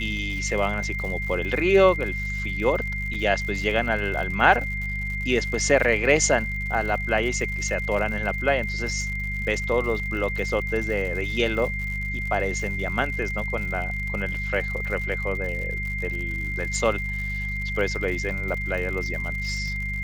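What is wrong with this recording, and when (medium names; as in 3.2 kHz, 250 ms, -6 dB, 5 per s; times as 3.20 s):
crackle 110 per s -32 dBFS
hum 50 Hz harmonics 4 -31 dBFS
whine 2.1 kHz -29 dBFS
3.14 s: dropout 4.7 ms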